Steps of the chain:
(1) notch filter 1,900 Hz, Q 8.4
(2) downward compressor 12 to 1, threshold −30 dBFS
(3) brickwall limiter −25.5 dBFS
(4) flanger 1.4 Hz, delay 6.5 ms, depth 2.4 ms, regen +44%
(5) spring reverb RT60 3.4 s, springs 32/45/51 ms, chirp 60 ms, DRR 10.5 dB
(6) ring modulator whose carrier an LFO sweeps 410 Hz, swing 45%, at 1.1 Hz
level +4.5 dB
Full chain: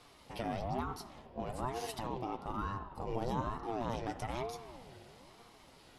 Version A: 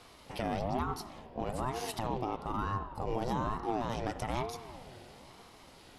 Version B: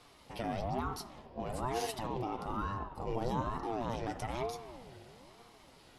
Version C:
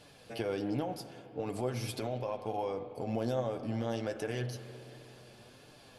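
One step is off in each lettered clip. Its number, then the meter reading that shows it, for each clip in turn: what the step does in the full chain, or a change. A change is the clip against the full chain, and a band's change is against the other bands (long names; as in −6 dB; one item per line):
4, change in integrated loudness +3.5 LU
2, average gain reduction 7.0 dB
6, change in crest factor −2.0 dB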